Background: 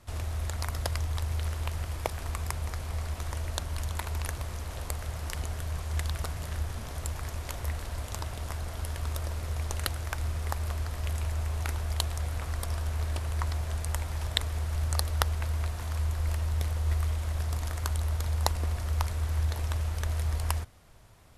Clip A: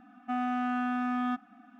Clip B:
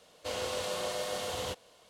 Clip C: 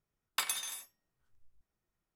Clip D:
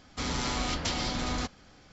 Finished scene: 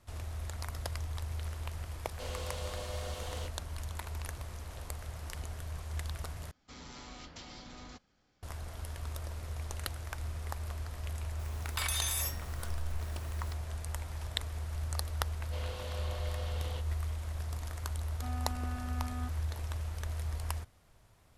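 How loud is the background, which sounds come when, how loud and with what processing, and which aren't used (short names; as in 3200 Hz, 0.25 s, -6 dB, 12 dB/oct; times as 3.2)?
background -7 dB
1.94 add B -8 dB
6.51 replace with D -17.5 dB
11.39 add C -5.5 dB + fast leveller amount 100%
15.27 add B -8.5 dB + Chebyshev low-pass 3800 Hz
17.93 add A -13.5 dB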